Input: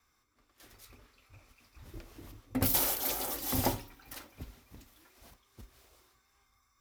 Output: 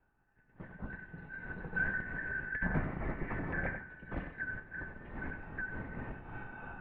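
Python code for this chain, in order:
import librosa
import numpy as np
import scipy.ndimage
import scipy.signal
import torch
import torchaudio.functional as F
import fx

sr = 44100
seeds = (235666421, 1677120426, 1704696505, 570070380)

y = fx.band_shuffle(x, sr, order='4123')
y = fx.recorder_agc(y, sr, target_db=-21.0, rise_db_per_s=13.0, max_gain_db=30)
y = 10.0 ** (-20.5 / 20.0) * np.tanh(y / 10.0 ** (-20.5 / 20.0))
y = scipy.signal.sosfilt(scipy.signal.butter(4, 1700.0, 'lowpass', fs=sr, output='sos'), y)
y = fx.tilt_eq(y, sr, slope=-4.0)
y = y * (1.0 - 0.47 / 2.0 + 0.47 / 2.0 * np.cos(2.0 * np.pi * 3.3 * (np.arange(len(y)) / sr)))
y = fx.peak_eq(y, sr, hz=180.0, db=6.0, octaves=1.9)
y = y + 10.0 ** (-9.5 / 20.0) * np.pad(y, (int(93 * sr / 1000.0), 0))[:len(y)]
y = fx.band_squash(y, sr, depth_pct=70, at=(3.3, 4.6))
y = y * 10.0 ** (2.0 / 20.0)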